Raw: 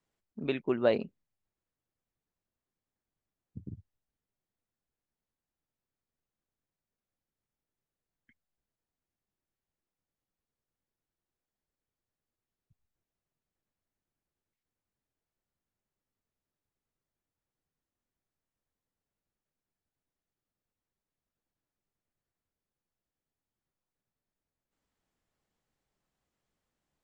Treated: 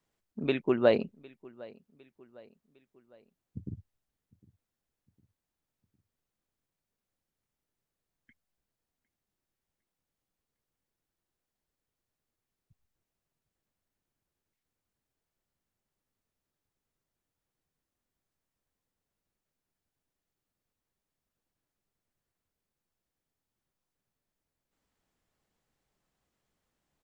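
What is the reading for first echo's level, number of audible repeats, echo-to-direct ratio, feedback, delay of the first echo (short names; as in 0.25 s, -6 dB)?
-23.0 dB, 2, -22.0 dB, 47%, 0.756 s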